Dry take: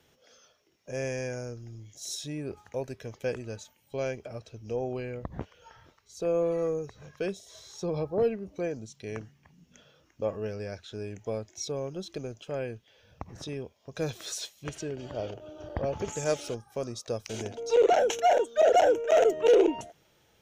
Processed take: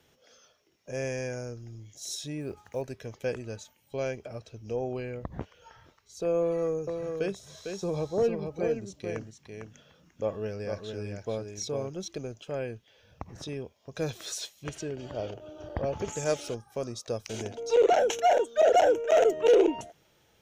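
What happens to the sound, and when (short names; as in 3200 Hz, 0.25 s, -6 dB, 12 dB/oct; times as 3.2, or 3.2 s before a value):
2.4–2.82 block floating point 7-bit
6.42–12.08 echo 0.452 s -5.5 dB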